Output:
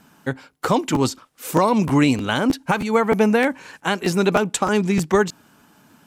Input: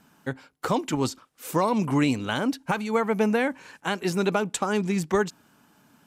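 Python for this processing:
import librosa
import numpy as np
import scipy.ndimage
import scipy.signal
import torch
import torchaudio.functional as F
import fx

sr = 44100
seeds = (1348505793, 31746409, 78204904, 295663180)

y = fx.buffer_crackle(x, sr, first_s=0.94, period_s=0.31, block=512, kind='repeat')
y = y * librosa.db_to_amplitude(6.0)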